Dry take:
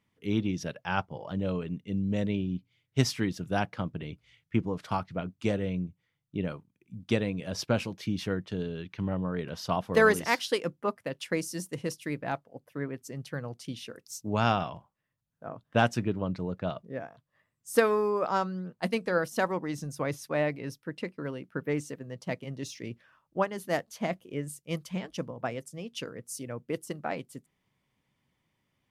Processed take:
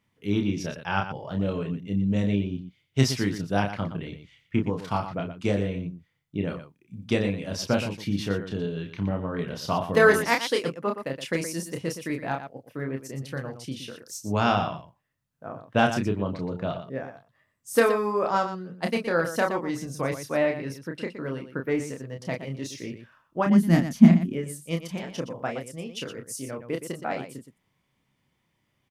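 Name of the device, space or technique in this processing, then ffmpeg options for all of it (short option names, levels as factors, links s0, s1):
slapback doubling: -filter_complex "[0:a]asettb=1/sr,asplit=3[s0][s1][s2];[s0]atrim=end=23.464[s3];[s1]atrim=start=23.46:end=24.33,asetpts=PTS-STARTPTS,afade=t=in:d=0.004:c=qsin,afade=t=out:st=0.866:d=0.004:c=qsin,lowshelf=f=340:t=q:w=3:g=13[s4];[s2]atrim=start=24.326[s5];[s3][s4]acrossfade=d=0.004:c1=hsin:c2=qsin[s6];[s6][s5]acrossfade=d=0.004:c1=qsin:c2=hsin,asplit=3[s7][s8][s9];[s8]adelay=30,volume=0.596[s10];[s9]adelay=119,volume=0.316[s11];[s7][s10][s11]amix=inputs=3:normalize=0,volume=1.26"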